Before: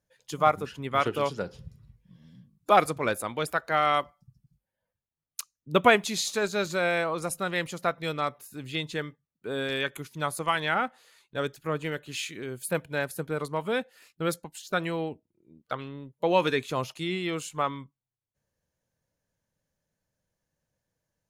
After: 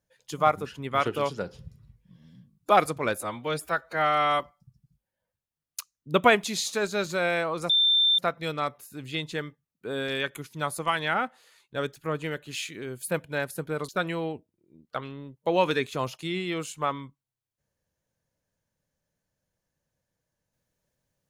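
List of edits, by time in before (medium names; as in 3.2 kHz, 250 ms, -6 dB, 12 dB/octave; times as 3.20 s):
3.21–4.00 s: stretch 1.5×
7.30–7.79 s: bleep 3.57 kHz -18 dBFS
13.49–14.65 s: delete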